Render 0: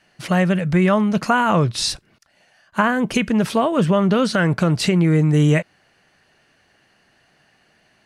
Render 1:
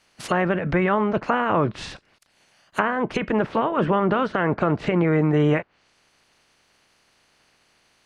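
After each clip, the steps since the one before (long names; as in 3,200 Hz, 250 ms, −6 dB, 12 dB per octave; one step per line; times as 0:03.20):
ceiling on every frequency bin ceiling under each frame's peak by 16 dB
treble cut that deepens with the level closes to 1,500 Hz, closed at −16 dBFS
level −3 dB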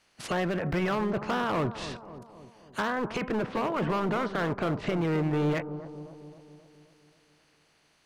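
hard clipping −20 dBFS, distortion −9 dB
on a send: bucket-brigade delay 265 ms, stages 2,048, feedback 56%, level −12 dB
on the sum: level −4.5 dB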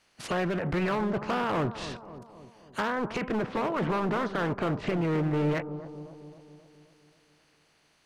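highs frequency-modulated by the lows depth 0.32 ms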